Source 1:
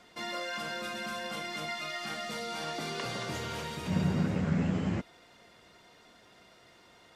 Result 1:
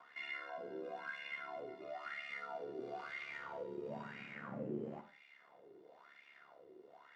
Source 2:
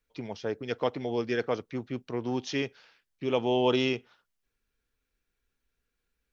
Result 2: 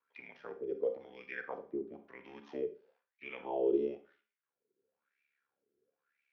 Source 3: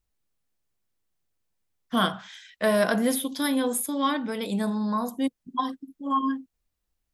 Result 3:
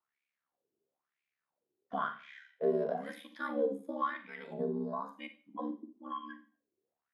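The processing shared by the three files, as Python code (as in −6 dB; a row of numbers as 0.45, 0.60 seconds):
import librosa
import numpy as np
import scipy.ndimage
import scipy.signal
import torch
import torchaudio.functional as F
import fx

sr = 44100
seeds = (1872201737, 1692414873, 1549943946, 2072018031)

y = scipy.signal.sosfilt(scipy.signal.butter(2, 120.0, 'highpass', fs=sr, output='sos'), x)
y = fx.hum_notches(y, sr, base_hz=50, count=5)
y = fx.dynamic_eq(y, sr, hz=840.0, q=1.8, threshold_db=-40.0, ratio=4.0, max_db=-3)
y = y * np.sin(2.0 * np.pi * 35.0 * np.arange(len(y)) / sr)
y = fx.low_shelf(y, sr, hz=320.0, db=10.0)
y = fx.wah_lfo(y, sr, hz=1.0, low_hz=370.0, high_hz=2400.0, q=7.3)
y = fx.rev_schroeder(y, sr, rt60_s=0.35, comb_ms=32, drr_db=12.5)
y = fx.hpss(y, sr, part='percussive', gain_db=-7)
y = fx.band_squash(y, sr, depth_pct=40)
y = y * librosa.db_to_amplitude(6.5)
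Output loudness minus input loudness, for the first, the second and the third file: −11.5, −7.5, −10.5 LU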